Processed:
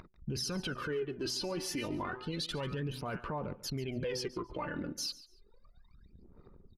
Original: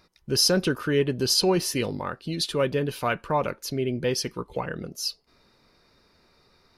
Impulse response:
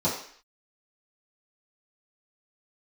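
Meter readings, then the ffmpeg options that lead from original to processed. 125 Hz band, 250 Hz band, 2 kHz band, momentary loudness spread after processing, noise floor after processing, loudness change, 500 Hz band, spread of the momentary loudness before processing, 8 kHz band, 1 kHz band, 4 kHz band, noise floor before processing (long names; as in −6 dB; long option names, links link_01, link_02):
−9.0 dB, −10.5 dB, −10.0 dB, 4 LU, −62 dBFS, −12.0 dB, −12.5 dB, 11 LU, −13.0 dB, −11.0 dB, −12.5 dB, −63 dBFS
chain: -af "bandreject=frequency=125.6:width_type=h:width=4,bandreject=frequency=251.2:width_type=h:width=4,bandreject=frequency=376.8:width_type=h:width=4,bandreject=frequency=502.4:width_type=h:width=4,bandreject=frequency=628:width_type=h:width=4,bandreject=frequency=753.6:width_type=h:width=4,bandreject=frequency=879.2:width_type=h:width=4,bandreject=frequency=1004.8:width_type=h:width=4,bandreject=frequency=1130.4:width_type=h:width=4,bandreject=frequency=1256:width_type=h:width=4,bandreject=frequency=1381.6:width_type=h:width=4,bandreject=frequency=1507.2:width_type=h:width=4,bandreject=frequency=1632.8:width_type=h:width=4,bandreject=frequency=1758.4:width_type=h:width=4,bandreject=frequency=1884:width_type=h:width=4,bandreject=frequency=2009.6:width_type=h:width=4,bandreject=frequency=2135.2:width_type=h:width=4,bandreject=frequency=2260.8:width_type=h:width=4,bandreject=frequency=2386.4:width_type=h:width=4,bandreject=frequency=2512:width_type=h:width=4,bandreject=frequency=2637.6:width_type=h:width=4,bandreject=frequency=2763.2:width_type=h:width=4,bandreject=frequency=2888.8:width_type=h:width=4,bandreject=frequency=3014.4:width_type=h:width=4,bandreject=frequency=3140:width_type=h:width=4,bandreject=frequency=3265.6:width_type=h:width=4,aphaser=in_gain=1:out_gain=1:delay=3.5:decay=0.67:speed=0.31:type=sinusoidal,lowpass=frequency=3700:poles=1,equalizer=frequency=580:width=2.1:gain=-3,acompressor=threshold=-32dB:ratio=3,alimiter=level_in=4.5dB:limit=-24dB:level=0:latency=1:release=11,volume=-4.5dB,acompressor=mode=upward:threshold=-46dB:ratio=2.5,anlmdn=0.0158,aecho=1:1:142|284:0.126|0.029"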